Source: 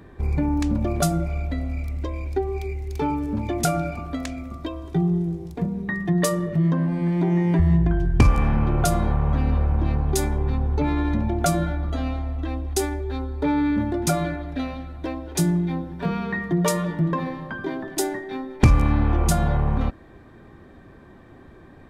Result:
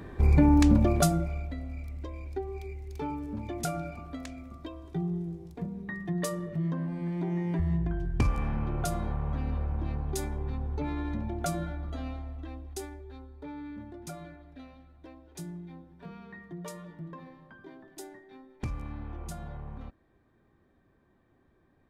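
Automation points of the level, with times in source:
0:00.72 +2.5 dB
0:01.56 −10.5 dB
0:12.11 −10.5 dB
0:13.47 −20 dB

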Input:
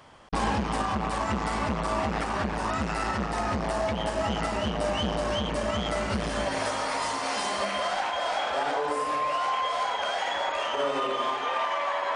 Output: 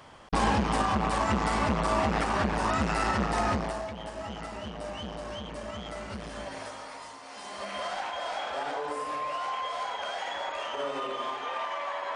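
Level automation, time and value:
0:03.50 +1.5 dB
0:03.90 −10 dB
0:06.53 −10 dB
0:07.26 −16.5 dB
0:07.80 −5.5 dB

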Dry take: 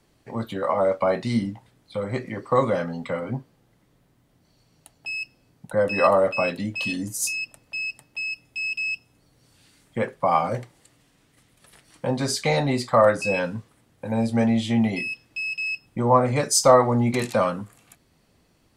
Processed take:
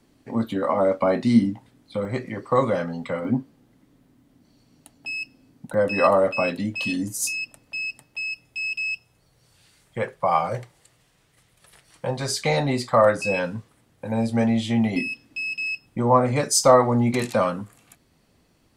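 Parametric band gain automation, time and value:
parametric band 260 Hz 0.61 octaves
+10 dB
from 0:02.05 +1 dB
from 0:03.25 +12 dB
from 0:05.74 +4 dB
from 0:08.03 −2 dB
from 0:08.82 −9.5 dB
from 0:12.40 −0.5 dB
from 0:14.96 +11 dB
from 0:15.68 +1.5 dB

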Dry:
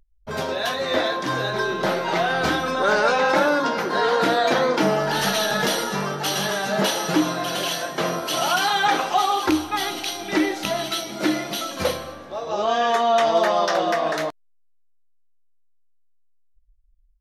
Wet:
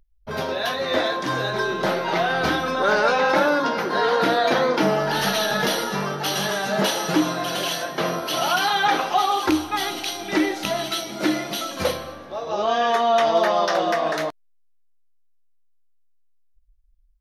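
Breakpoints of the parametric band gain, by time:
parametric band 7,600 Hz 0.28 octaves
−14.5 dB
from 0:00.93 −3 dB
from 0:01.91 −12 dB
from 0:06.35 −4.5 dB
from 0:07.84 −14 dB
from 0:09.31 −3 dB
from 0:11.91 −10 dB
from 0:13.71 −4 dB

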